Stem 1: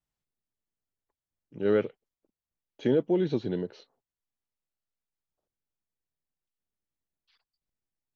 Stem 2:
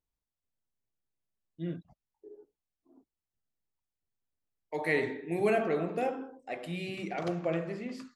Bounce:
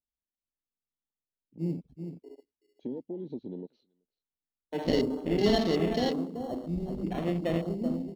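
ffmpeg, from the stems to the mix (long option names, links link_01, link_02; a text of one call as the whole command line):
ffmpeg -i stem1.wav -i stem2.wav -filter_complex "[0:a]acompressor=threshold=-28dB:ratio=4,volume=-9dB,asplit=2[link_01][link_02];[link_02]volume=-20.5dB[link_03];[1:a]acrusher=samples=18:mix=1:aa=0.000001,equalizer=frequency=64:width=0.43:gain=9.5,volume=-0.5dB,asplit=3[link_04][link_05][link_06];[link_05]volume=-8dB[link_07];[link_06]apad=whole_len=359837[link_08];[link_01][link_08]sidechaincompress=threshold=-52dB:ratio=3:attack=16:release=740[link_09];[link_03][link_07]amix=inputs=2:normalize=0,aecho=0:1:380:1[link_10];[link_09][link_04][link_10]amix=inputs=3:normalize=0,afwtdn=0.00891,equalizer=frequency=100:width_type=o:width=0.67:gain=-8,equalizer=frequency=250:width_type=o:width=0.67:gain=8,equalizer=frequency=1600:width_type=o:width=0.67:gain=-7,equalizer=frequency=4000:width_type=o:width=0.67:gain=8" out.wav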